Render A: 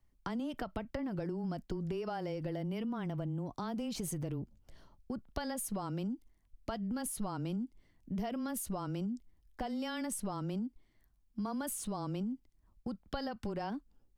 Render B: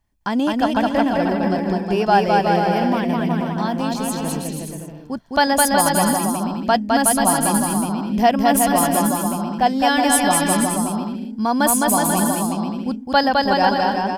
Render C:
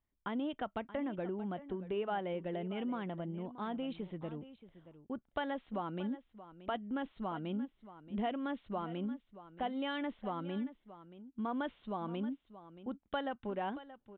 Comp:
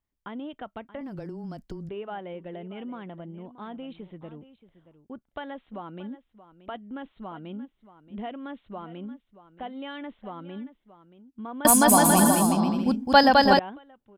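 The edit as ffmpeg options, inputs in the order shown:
ffmpeg -i take0.wav -i take1.wav -i take2.wav -filter_complex "[2:a]asplit=3[link_01][link_02][link_03];[link_01]atrim=end=1.012[link_04];[0:a]atrim=start=1.008:end=1.892[link_05];[link_02]atrim=start=1.888:end=11.652[link_06];[1:a]atrim=start=11.648:end=13.592[link_07];[link_03]atrim=start=13.588[link_08];[link_04][link_05]acrossfade=duration=0.004:curve1=hsin:curve2=hsin[link_09];[link_09][link_06]acrossfade=duration=0.004:curve1=hsin:curve2=hsin[link_10];[link_10][link_07]acrossfade=duration=0.004:curve1=hsin:curve2=hsin[link_11];[link_11][link_08]acrossfade=duration=0.004:curve1=hsin:curve2=hsin" out.wav

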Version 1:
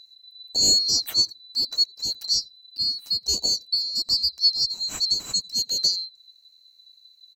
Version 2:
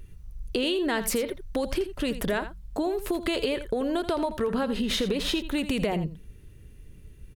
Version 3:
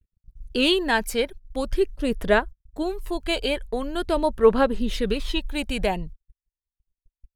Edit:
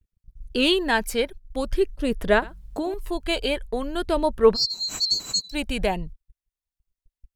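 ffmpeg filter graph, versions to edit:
ffmpeg -i take0.wav -i take1.wav -i take2.wav -filter_complex "[2:a]asplit=3[link_01][link_02][link_03];[link_01]atrim=end=2.422[link_04];[1:a]atrim=start=2.418:end=2.942[link_05];[link_02]atrim=start=2.938:end=4.57[link_06];[0:a]atrim=start=4.53:end=5.55[link_07];[link_03]atrim=start=5.51[link_08];[link_04][link_05]acrossfade=duration=0.004:curve1=hsin:curve2=hsin[link_09];[link_09][link_06]acrossfade=duration=0.004:curve1=hsin:curve2=hsin[link_10];[link_10][link_07]acrossfade=duration=0.04:curve1=tri:curve2=tri[link_11];[link_11][link_08]acrossfade=duration=0.04:curve1=tri:curve2=tri" out.wav

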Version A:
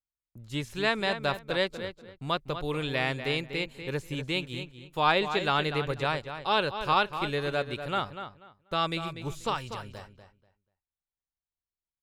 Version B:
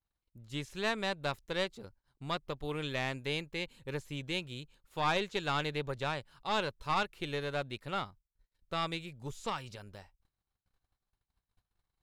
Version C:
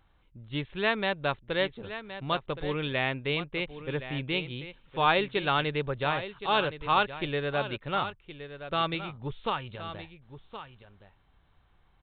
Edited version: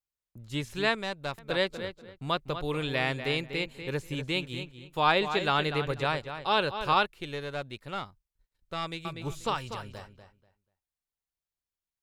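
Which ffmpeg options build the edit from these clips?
ffmpeg -i take0.wav -i take1.wav -filter_complex "[1:a]asplit=2[link_01][link_02];[0:a]asplit=3[link_03][link_04][link_05];[link_03]atrim=end=0.952[link_06];[link_01]atrim=start=0.948:end=1.382[link_07];[link_04]atrim=start=1.378:end=7.062[link_08];[link_02]atrim=start=7.058:end=9.052[link_09];[link_05]atrim=start=9.048[link_10];[link_06][link_07]acrossfade=duration=0.004:curve1=hsin:curve2=hsin[link_11];[link_11][link_08]acrossfade=duration=0.004:curve1=hsin:curve2=hsin[link_12];[link_12][link_09]acrossfade=duration=0.004:curve1=hsin:curve2=hsin[link_13];[link_13][link_10]acrossfade=duration=0.004:curve1=hsin:curve2=hsin" out.wav

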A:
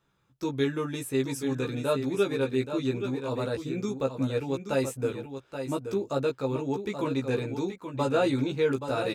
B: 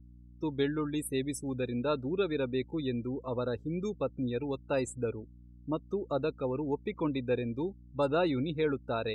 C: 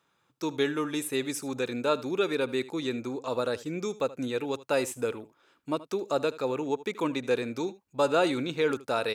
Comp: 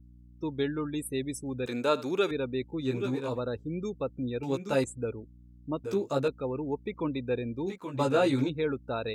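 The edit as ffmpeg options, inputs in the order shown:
ffmpeg -i take0.wav -i take1.wav -i take2.wav -filter_complex "[0:a]asplit=4[link_01][link_02][link_03][link_04];[1:a]asplit=6[link_05][link_06][link_07][link_08][link_09][link_10];[link_05]atrim=end=1.662[link_11];[2:a]atrim=start=1.658:end=2.312[link_12];[link_06]atrim=start=2.308:end=2.95[link_13];[link_01]atrim=start=2.79:end=3.41[link_14];[link_07]atrim=start=3.25:end=4.432[link_15];[link_02]atrim=start=4.428:end=4.842[link_16];[link_08]atrim=start=4.838:end=5.842[link_17];[link_03]atrim=start=5.838:end=6.282[link_18];[link_09]atrim=start=6.278:end=7.68[link_19];[link_04]atrim=start=7.66:end=8.5[link_20];[link_10]atrim=start=8.48[link_21];[link_11][link_12]acrossfade=duration=0.004:curve1=hsin:curve2=hsin[link_22];[link_22][link_13]acrossfade=duration=0.004:curve1=hsin:curve2=hsin[link_23];[link_23][link_14]acrossfade=duration=0.16:curve1=tri:curve2=tri[link_24];[link_24][link_15]acrossfade=duration=0.16:curve1=tri:curve2=tri[link_25];[link_25][link_16]acrossfade=duration=0.004:curve1=hsin:curve2=hsin[link_26];[link_26][link_17]acrossfade=duration=0.004:curve1=hsin:curve2=hsin[link_27];[link_27][link_18]acrossfade=duration=0.004:curve1=hsin:curve2=hsin[link_28];[link_28][link_19]acrossfade=duration=0.004:curve1=hsin:curve2=hsin[link_29];[link_29][link_20]acrossfade=duration=0.02:curve1=tri:curve2=tri[link_30];[link_30][link_21]acrossfade=duration=0.02:curve1=tri:curve2=tri" out.wav

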